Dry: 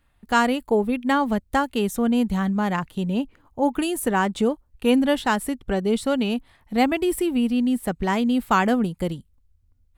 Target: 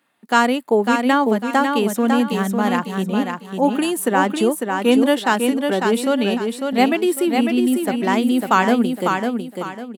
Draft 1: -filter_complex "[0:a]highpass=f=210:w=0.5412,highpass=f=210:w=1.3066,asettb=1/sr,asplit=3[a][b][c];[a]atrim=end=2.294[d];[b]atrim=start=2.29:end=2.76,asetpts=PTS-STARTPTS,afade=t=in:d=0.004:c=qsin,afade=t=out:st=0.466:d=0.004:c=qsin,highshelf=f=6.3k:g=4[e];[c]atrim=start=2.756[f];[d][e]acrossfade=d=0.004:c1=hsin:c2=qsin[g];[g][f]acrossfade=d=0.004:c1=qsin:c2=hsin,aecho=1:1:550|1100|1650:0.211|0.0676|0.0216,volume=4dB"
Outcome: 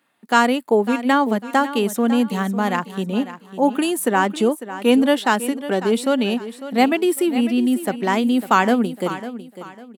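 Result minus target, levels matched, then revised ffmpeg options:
echo-to-direct -8.5 dB
-filter_complex "[0:a]highpass=f=210:w=0.5412,highpass=f=210:w=1.3066,asettb=1/sr,asplit=3[a][b][c];[a]atrim=end=2.294[d];[b]atrim=start=2.29:end=2.76,asetpts=PTS-STARTPTS,afade=t=in:d=0.004:c=qsin,afade=t=out:st=0.466:d=0.004:c=qsin,highshelf=f=6.3k:g=4[e];[c]atrim=start=2.756[f];[d][e]acrossfade=d=0.004:c1=hsin:c2=qsin[g];[g][f]acrossfade=d=0.004:c1=qsin:c2=hsin,aecho=1:1:550|1100|1650|2200:0.562|0.18|0.0576|0.0184,volume=4dB"

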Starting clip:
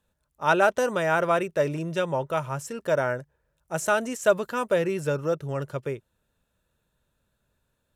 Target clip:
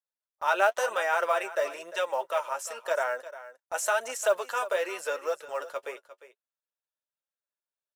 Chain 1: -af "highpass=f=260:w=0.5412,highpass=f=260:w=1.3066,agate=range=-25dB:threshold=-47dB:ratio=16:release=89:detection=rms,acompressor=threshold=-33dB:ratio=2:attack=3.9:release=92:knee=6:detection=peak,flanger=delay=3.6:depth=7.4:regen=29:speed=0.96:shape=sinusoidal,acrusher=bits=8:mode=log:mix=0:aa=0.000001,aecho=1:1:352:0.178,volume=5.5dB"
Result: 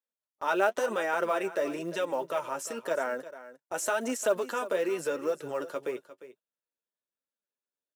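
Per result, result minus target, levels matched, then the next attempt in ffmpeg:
250 Hz band +16.0 dB; compressor: peak gain reduction +4 dB
-af "highpass=f=570:w=0.5412,highpass=f=570:w=1.3066,agate=range=-25dB:threshold=-47dB:ratio=16:release=89:detection=rms,acompressor=threshold=-33dB:ratio=2:attack=3.9:release=92:knee=6:detection=peak,flanger=delay=3.6:depth=7.4:regen=29:speed=0.96:shape=sinusoidal,acrusher=bits=8:mode=log:mix=0:aa=0.000001,aecho=1:1:352:0.178,volume=5.5dB"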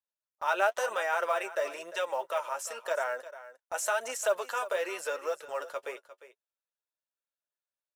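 compressor: peak gain reduction +3 dB
-af "highpass=f=570:w=0.5412,highpass=f=570:w=1.3066,agate=range=-25dB:threshold=-47dB:ratio=16:release=89:detection=rms,acompressor=threshold=-26.5dB:ratio=2:attack=3.9:release=92:knee=6:detection=peak,flanger=delay=3.6:depth=7.4:regen=29:speed=0.96:shape=sinusoidal,acrusher=bits=8:mode=log:mix=0:aa=0.000001,aecho=1:1:352:0.178,volume=5.5dB"

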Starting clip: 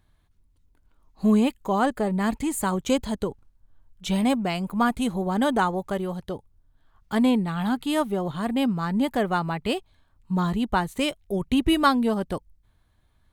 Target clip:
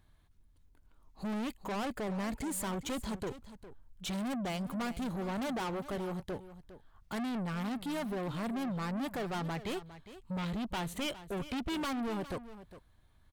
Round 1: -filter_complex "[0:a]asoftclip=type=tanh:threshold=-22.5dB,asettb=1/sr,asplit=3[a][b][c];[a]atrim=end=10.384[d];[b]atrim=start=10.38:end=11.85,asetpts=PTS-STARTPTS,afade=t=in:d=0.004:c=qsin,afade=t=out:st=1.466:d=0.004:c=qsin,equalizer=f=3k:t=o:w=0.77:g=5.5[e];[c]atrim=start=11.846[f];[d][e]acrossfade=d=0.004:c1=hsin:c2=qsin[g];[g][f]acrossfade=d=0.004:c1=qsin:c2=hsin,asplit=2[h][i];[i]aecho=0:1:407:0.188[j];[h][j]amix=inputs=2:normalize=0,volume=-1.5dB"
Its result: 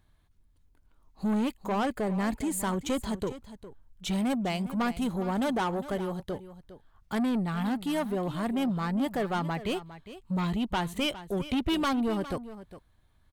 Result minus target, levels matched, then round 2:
soft clip: distortion -5 dB
-filter_complex "[0:a]asoftclip=type=tanh:threshold=-32.5dB,asettb=1/sr,asplit=3[a][b][c];[a]atrim=end=10.384[d];[b]atrim=start=10.38:end=11.85,asetpts=PTS-STARTPTS,afade=t=in:d=0.004:c=qsin,afade=t=out:st=1.466:d=0.004:c=qsin,equalizer=f=3k:t=o:w=0.77:g=5.5[e];[c]atrim=start=11.846[f];[d][e]acrossfade=d=0.004:c1=hsin:c2=qsin[g];[g][f]acrossfade=d=0.004:c1=qsin:c2=hsin,asplit=2[h][i];[i]aecho=0:1:407:0.188[j];[h][j]amix=inputs=2:normalize=0,volume=-1.5dB"

